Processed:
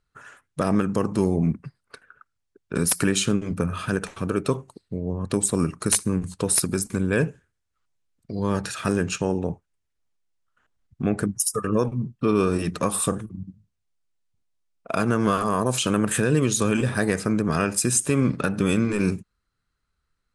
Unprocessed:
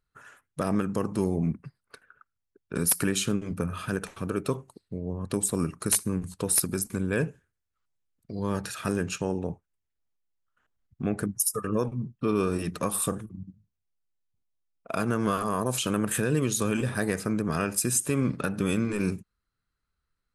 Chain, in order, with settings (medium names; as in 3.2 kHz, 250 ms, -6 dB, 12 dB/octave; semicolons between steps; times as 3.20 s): low-pass 9.9 kHz 24 dB/octave; trim +5 dB